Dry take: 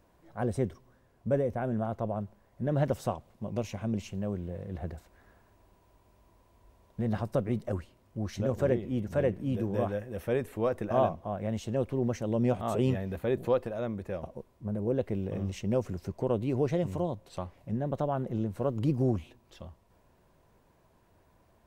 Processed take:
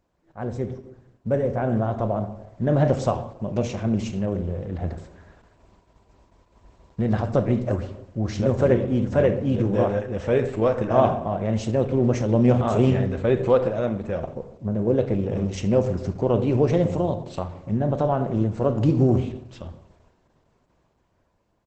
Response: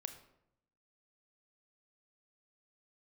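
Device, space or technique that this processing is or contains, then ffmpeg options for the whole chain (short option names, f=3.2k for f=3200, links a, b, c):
speakerphone in a meeting room: -filter_complex "[0:a]asettb=1/sr,asplit=3[a][b][c];[a]atrim=end=12.004[d];[b]atrim=start=12:end=13.43,asetpts=PTS-STARTPTS,afade=t=in:d=0.004:c=qsin,afade=t=out:st=1.426:d=0.004:c=qsin,lowshelf=f=150:g=2.5[e];[c]atrim=start=13.426[f];[d][e]acrossfade=d=0.004:c1=hsin:c2=qsin[g];[g][f]acrossfade=d=0.004:c1=qsin:c2=hsin[h];[1:a]atrim=start_sample=2205[i];[h][i]afir=irnorm=-1:irlink=0,asplit=2[j][k];[k]adelay=290,highpass=300,lowpass=3.4k,asoftclip=type=hard:threshold=-24.5dB,volume=-28dB[l];[j][l]amix=inputs=2:normalize=0,dynaudnorm=f=240:g=11:m=8dB,agate=range=-7dB:threshold=-57dB:ratio=16:detection=peak,volume=4dB" -ar 48000 -c:a libopus -b:a 12k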